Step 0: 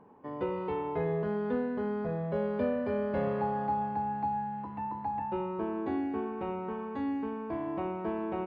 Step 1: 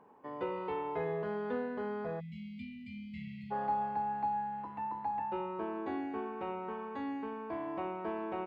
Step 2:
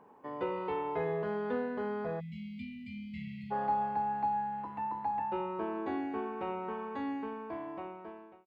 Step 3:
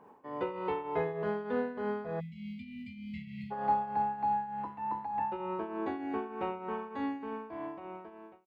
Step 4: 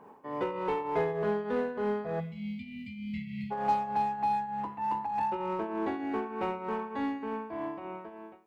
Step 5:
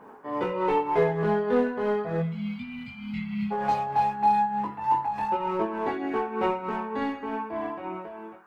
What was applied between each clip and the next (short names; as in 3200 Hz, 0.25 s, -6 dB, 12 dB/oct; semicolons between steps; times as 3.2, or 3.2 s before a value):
spectral delete 2.2–3.51, 240–1900 Hz; low shelf 310 Hz -11.5 dB
ending faded out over 1.35 s; gain +2 dB
tremolo triangle 3.3 Hz, depth 70%; gain +3.5 dB
in parallel at -5 dB: hard clip -34 dBFS, distortion -8 dB; on the sum: two-slope reverb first 0.75 s, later 3.3 s, from -28 dB, DRR 14 dB
band noise 710–1600 Hz -64 dBFS; chorus voices 4, 0.31 Hz, delay 20 ms, depth 4 ms; gain +8.5 dB